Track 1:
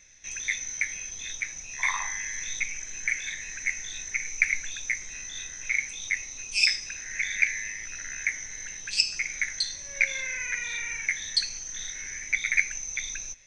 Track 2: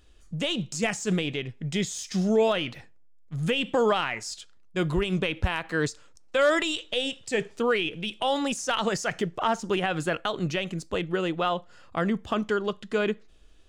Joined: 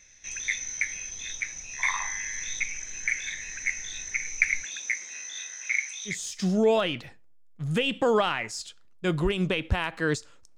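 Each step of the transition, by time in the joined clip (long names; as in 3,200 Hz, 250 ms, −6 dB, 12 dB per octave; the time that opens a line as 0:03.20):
track 1
0:04.63–0:06.19: high-pass filter 200 Hz → 1,200 Hz
0:06.12: continue with track 2 from 0:01.84, crossfade 0.14 s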